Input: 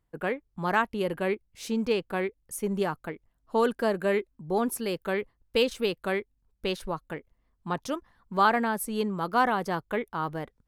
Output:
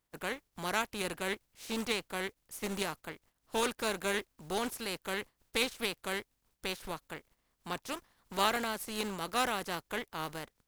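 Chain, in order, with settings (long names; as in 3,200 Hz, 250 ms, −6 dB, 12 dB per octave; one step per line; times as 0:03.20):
compressing power law on the bin magnitudes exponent 0.49
highs frequency-modulated by the lows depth 0.22 ms
level −7.5 dB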